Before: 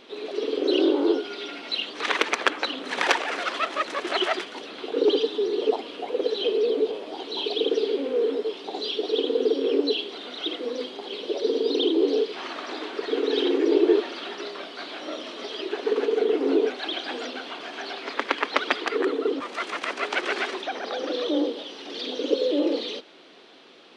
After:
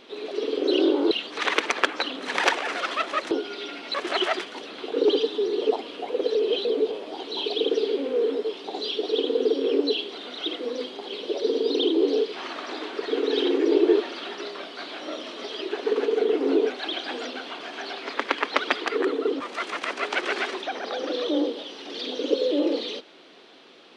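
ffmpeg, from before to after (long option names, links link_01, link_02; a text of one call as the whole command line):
ffmpeg -i in.wav -filter_complex "[0:a]asplit=6[link_01][link_02][link_03][link_04][link_05][link_06];[link_01]atrim=end=1.112[link_07];[link_02]atrim=start=1.738:end=3.942[link_08];[link_03]atrim=start=1.108:end=1.742[link_09];[link_04]atrim=start=3.938:end=6.352[link_10];[link_05]atrim=start=6.348:end=6.652,asetpts=PTS-STARTPTS,areverse[link_11];[link_06]atrim=start=6.648[link_12];[link_07][link_08]acrossfade=duration=0.004:curve1=hsin:curve2=hsin[link_13];[link_13][link_09]acrossfade=duration=0.004:curve1=hsin:curve2=hsin[link_14];[link_14][link_10]acrossfade=duration=0.004:curve1=hsin:curve2=hsin[link_15];[link_15][link_11]acrossfade=duration=0.004:curve1=hsin:curve2=hsin[link_16];[link_16][link_12]acrossfade=duration=0.004:curve1=hsin:curve2=hsin" out.wav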